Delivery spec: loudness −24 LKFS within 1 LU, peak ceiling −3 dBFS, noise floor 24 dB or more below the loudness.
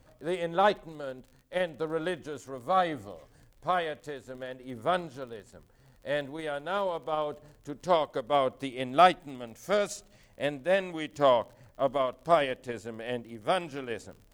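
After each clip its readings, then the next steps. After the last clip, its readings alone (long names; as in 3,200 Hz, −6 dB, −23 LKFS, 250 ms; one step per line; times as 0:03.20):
crackle rate 40 per second; integrated loudness −30.0 LKFS; sample peak −8.0 dBFS; target loudness −24.0 LKFS
→ click removal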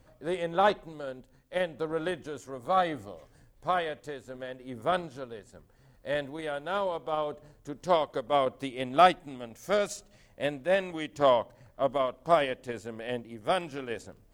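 crackle rate 0.42 per second; integrated loudness −30.0 LKFS; sample peak −8.0 dBFS; target loudness −24.0 LKFS
→ level +6 dB
brickwall limiter −3 dBFS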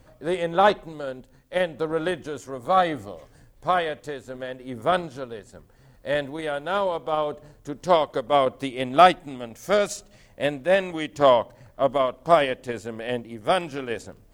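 integrated loudness −24.0 LKFS; sample peak −3.0 dBFS; background noise floor −55 dBFS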